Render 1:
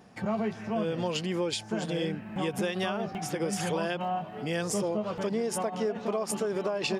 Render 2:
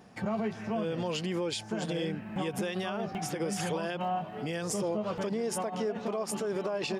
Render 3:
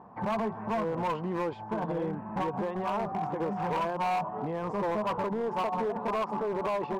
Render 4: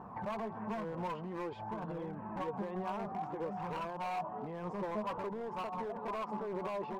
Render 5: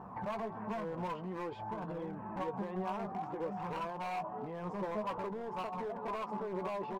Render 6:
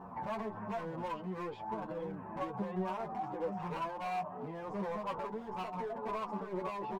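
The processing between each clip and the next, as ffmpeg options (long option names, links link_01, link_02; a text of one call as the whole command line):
ffmpeg -i in.wav -af "alimiter=limit=-23.5dB:level=0:latency=1:release=68" out.wav
ffmpeg -i in.wav -af "lowpass=frequency=1000:width_type=q:width=6.2,volume=26dB,asoftclip=hard,volume=-26dB" out.wav
ffmpeg -i in.wav -af "alimiter=level_in=13.5dB:limit=-24dB:level=0:latency=1:release=225,volume=-13.5dB,flanger=delay=0.7:depth=4.8:regen=57:speed=0.53:shape=sinusoidal,volume=7.5dB" out.wav
ffmpeg -i in.wav -filter_complex "[0:a]asplit=2[link_01][link_02];[link_02]adelay=16,volume=-11.5dB[link_03];[link_01][link_03]amix=inputs=2:normalize=0" out.wav
ffmpeg -i in.wav -filter_complex "[0:a]asplit=2[link_01][link_02];[link_02]adelay=8.1,afreqshift=-1.4[link_03];[link_01][link_03]amix=inputs=2:normalize=1,volume=3dB" out.wav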